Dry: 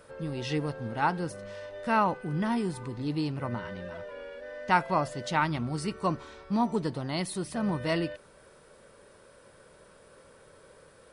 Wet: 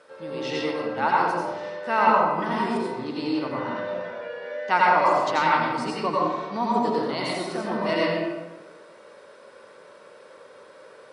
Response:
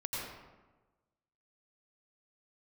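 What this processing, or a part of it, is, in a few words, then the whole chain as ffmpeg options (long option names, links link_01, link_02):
supermarket ceiling speaker: -filter_complex "[0:a]highpass=340,lowpass=6200[link_01];[1:a]atrim=start_sample=2205[link_02];[link_01][link_02]afir=irnorm=-1:irlink=0,volume=5dB"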